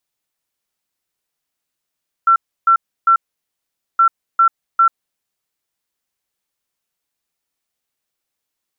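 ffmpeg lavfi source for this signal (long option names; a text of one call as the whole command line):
ffmpeg -f lavfi -i "aevalsrc='0.422*sin(2*PI*1350*t)*clip(min(mod(mod(t,1.72),0.4),0.09-mod(mod(t,1.72),0.4))/0.005,0,1)*lt(mod(t,1.72),1.2)':duration=3.44:sample_rate=44100" out.wav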